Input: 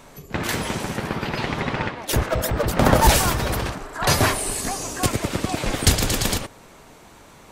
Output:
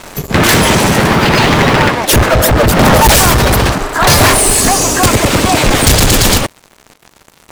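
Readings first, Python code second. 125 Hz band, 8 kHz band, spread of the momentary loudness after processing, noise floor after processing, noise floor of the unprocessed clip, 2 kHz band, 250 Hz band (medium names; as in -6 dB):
+12.0 dB, +14.0 dB, 5 LU, -48 dBFS, -47 dBFS, +14.5 dB, +13.5 dB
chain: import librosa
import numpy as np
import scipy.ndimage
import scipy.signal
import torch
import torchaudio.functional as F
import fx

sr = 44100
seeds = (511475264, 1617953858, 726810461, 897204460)

y = fx.rider(x, sr, range_db=3, speed_s=2.0)
y = fx.leveller(y, sr, passes=5)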